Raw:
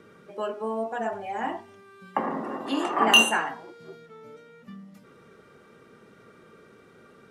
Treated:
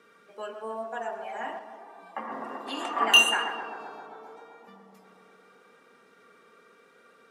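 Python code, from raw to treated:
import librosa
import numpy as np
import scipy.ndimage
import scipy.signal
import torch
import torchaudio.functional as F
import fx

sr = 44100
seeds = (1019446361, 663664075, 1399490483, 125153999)

y = fx.highpass(x, sr, hz=880.0, slope=6)
y = y + 0.32 * np.pad(y, (int(4.3 * sr / 1000.0), 0))[:len(y)]
y = fx.echo_tape(y, sr, ms=130, feedback_pct=89, wet_db=-6.5, lp_hz=1600.0, drive_db=8.0, wow_cents=34)
y = fx.ensemble(y, sr, at=(1.59, 2.32))
y = F.gain(torch.from_numpy(y), -2.0).numpy()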